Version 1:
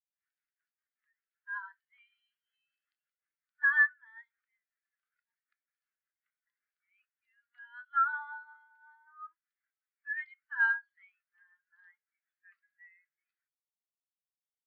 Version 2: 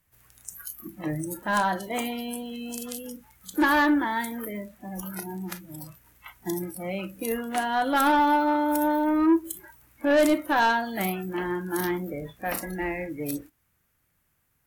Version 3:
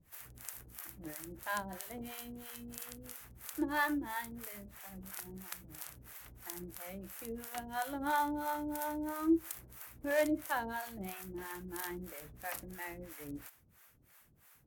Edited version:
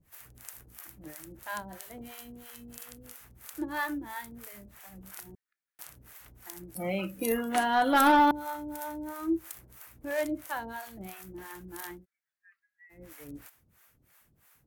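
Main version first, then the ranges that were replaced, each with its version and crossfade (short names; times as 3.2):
3
5.35–5.79 from 1
6.75–8.31 from 2
11.98–12.97 from 1, crossfade 0.16 s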